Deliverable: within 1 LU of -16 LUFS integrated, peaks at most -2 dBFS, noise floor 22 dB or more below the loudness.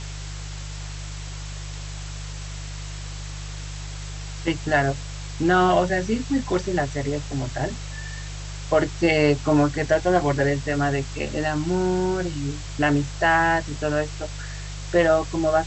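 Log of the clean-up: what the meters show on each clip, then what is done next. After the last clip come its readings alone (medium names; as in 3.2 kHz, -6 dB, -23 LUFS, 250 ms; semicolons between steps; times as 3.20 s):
hum 50 Hz; highest harmonic 150 Hz; hum level -31 dBFS; noise floor -34 dBFS; noise floor target -45 dBFS; loudness -23.0 LUFS; peak level -6.5 dBFS; loudness target -16.0 LUFS
-> de-hum 50 Hz, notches 3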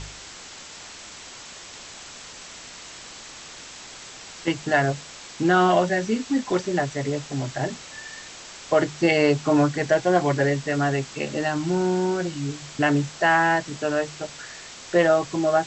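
hum not found; noise floor -42 dBFS; noise floor target -45 dBFS
-> noise print and reduce 6 dB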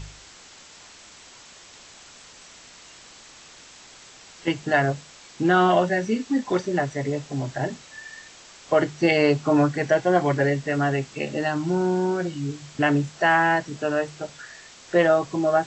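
noise floor -48 dBFS; loudness -23.0 LUFS; peak level -6.5 dBFS; loudness target -16.0 LUFS
-> trim +7 dB; peak limiter -2 dBFS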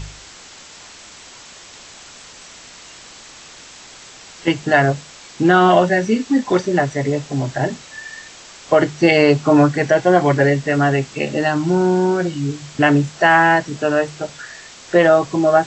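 loudness -16.0 LUFS; peak level -2.0 dBFS; noise floor -41 dBFS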